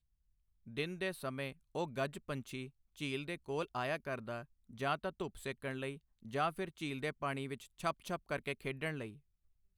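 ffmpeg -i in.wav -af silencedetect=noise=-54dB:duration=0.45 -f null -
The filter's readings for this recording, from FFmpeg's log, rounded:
silence_start: 0.00
silence_end: 0.66 | silence_duration: 0.66
silence_start: 9.18
silence_end: 9.78 | silence_duration: 0.60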